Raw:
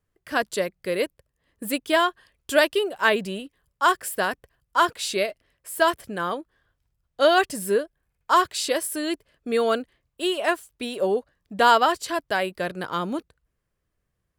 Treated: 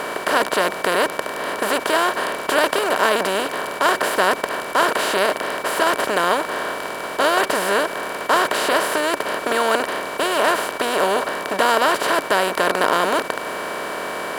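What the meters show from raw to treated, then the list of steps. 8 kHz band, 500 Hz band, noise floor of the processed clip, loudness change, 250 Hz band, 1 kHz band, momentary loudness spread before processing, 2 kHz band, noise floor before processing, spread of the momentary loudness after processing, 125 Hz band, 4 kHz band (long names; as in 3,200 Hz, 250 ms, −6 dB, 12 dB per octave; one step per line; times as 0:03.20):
+6.0 dB, +4.5 dB, −30 dBFS, +4.0 dB, +2.5 dB, +5.0 dB, 13 LU, +6.5 dB, −78 dBFS, 7 LU, +1.5 dB, +5.5 dB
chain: compressor on every frequency bin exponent 0.2
steady tone 2,300 Hz −31 dBFS
level −6 dB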